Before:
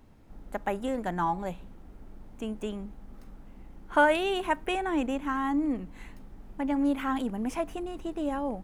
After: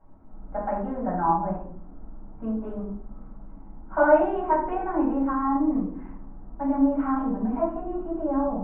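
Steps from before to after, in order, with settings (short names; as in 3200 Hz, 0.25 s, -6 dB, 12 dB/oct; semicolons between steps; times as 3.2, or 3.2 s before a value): LPF 1300 Hz 24 dB/oct; low shelf 220 Hz -8.5 dB; notch 510 Hz, Q 16; de-hum 53.2 Hz, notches 10; flange 1.1 Hz, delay 1.6 ms, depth 5.7 ms, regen -75%; shoebox room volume 570 m³, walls furnished, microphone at 7.4 m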